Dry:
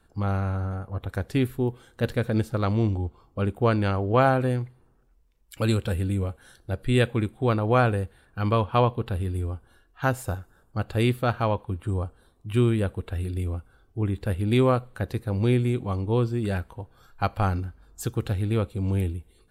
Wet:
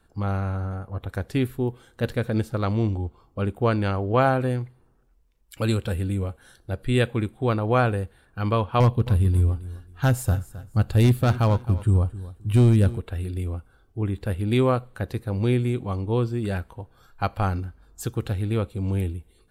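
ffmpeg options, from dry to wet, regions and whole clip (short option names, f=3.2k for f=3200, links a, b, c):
-filter_complex "[0:a]asettb=1/sr,asplit=3[a][b][c];[a]atrim=end=8.804[d];[b]atrim=start=8.8:end=12.98,asetpts=PTS-STARTPTS,afade=t=in:d=0.004:c=qsin,afade=t=out:st=4.176:d=0.004:c=qsin,asoftclip=type=hard:threshold=-17.5dB,bass=f=250:g=9,treble=f=4k:g=6,aecho=1:1:264|528:0.15|0.0374,atrim=end_sample=184338[e];[c]atrim=start=12.976[f];[d][e]acrossfade=d=0.004:c1=hsin:c2=qsin[g];[g][f]acrossfade=d=0.004:c1=qsin:c2=hsin"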